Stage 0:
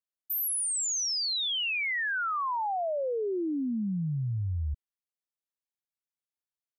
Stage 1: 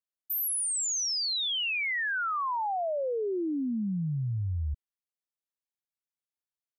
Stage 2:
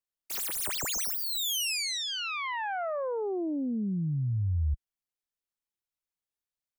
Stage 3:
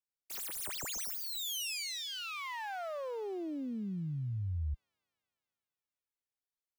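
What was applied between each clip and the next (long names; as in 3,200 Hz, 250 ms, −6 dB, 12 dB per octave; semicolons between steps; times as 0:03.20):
no processing that can be heard
phase distortion by the signal itself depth 0.17 ms; low-shelf EQ 62 Hz +11.5 dB; level −1 dB
delay with a high-pass on its return 229 ms, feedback 67%, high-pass 2,000 Hz, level −16 dB; level −7.5 dB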